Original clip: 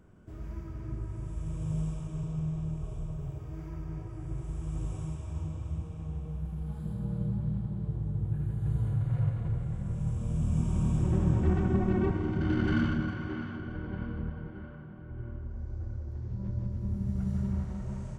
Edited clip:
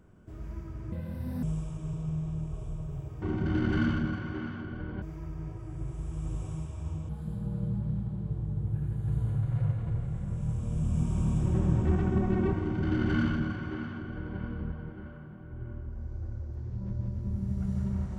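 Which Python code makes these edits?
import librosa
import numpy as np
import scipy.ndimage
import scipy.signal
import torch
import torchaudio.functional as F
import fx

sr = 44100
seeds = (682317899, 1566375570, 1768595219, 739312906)

y = fx.edit(x, sr, fx.speed_span(start_s=0.92, length_s=0.81, speed=1.59),
    fx.cut(start_s=5.59, length_s=1.08),
    fx.duplicate(start_s=12.17, length_s=1.8, to_s=3.52), tone=tone)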